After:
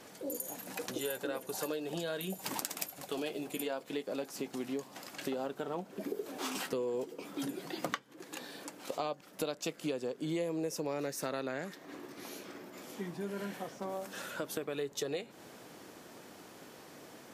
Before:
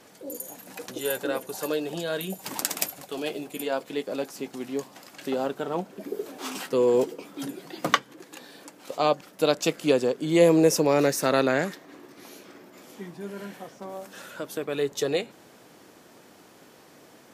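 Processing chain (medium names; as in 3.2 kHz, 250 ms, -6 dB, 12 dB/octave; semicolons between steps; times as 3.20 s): compression 6:1, threshold -34 dBFS, peak gain reduction 19.5 dB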